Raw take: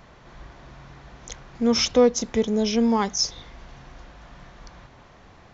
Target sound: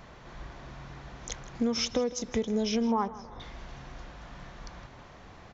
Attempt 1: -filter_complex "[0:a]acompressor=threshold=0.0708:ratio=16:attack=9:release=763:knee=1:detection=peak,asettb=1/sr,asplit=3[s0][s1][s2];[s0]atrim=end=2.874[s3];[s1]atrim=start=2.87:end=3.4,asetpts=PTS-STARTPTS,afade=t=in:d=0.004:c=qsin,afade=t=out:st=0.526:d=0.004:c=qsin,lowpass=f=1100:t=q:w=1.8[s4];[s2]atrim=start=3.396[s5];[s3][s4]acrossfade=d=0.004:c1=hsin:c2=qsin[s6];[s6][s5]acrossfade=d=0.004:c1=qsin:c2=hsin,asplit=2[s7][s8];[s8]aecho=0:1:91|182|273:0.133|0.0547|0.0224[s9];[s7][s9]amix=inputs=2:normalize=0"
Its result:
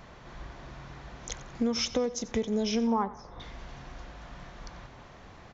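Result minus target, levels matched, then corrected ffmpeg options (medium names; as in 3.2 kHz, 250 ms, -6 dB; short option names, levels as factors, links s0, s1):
echo 69 ms early
-filter_complex "[0:a]acompressor=threshold=0.0708:ratio=16:attack=9:release=763:knee=1:detection=peak,asettb=1/sr,asplit=3[s0][s1][s2];[s0]atrim=end=2.874[s3];[s1]atrim=start=2.87:end=3.4,asetpts=PTS-STARTPTS,afade=t=in:d=0.004:c=qsin,afade=t=out:st=0.526:d=0.004:c=qsin,lowpass=f=1100:t=q:w=1.8[s4];[s2]atrim=start=3.396[s5];[s3][s4]acrossfade=d=0.004:c1=hsin:c2=qsin[s6];[s6][s5]acrossfade=d=0.004:c1=qsin:c2=hsin,asplit=2[s7][s8];[s8]aecho=0:1:160|320|480:0.133|0.0547|0.0224[s9];[s7][s9]amix=inputs=2:normalize=0"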